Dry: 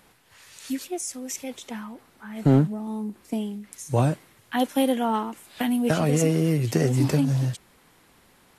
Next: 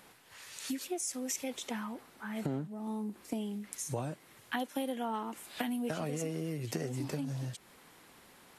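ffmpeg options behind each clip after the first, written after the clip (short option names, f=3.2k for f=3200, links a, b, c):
-af "acompressor=threshold=-32dB:ratio=6,lowshelf=f=110:g=-10.5"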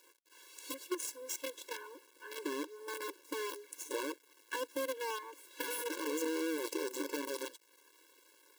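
-filter_complex "[0:a]acrossover=split=170[a][b];[a]dynaudnorm=f=310:g=11:m=9.5dB[c];[c][b]amix=inputs=2:normalize=0,acrusher=bits=6:dc=4:mix=0:aa=0.000001,afftfilt=real='re*eq(mod(floor(b*sr/1024/290),2),1)':imag='im*eq(mod(floor(b*sr/1024/290),2),1)':win_size=1024:overlap=0.75"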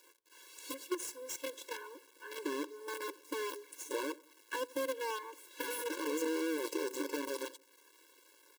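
-filter_complex "[0:a]acrossover=split=1500[a][b];[a]aecho=1:1:88|176|264:0.0891|0.0374|0.0157[c];[b]asoftclip=type=tanh:threshold=-35.5dB[d];[c][d]amix=inputs=2:normalize=0,volume=1dB"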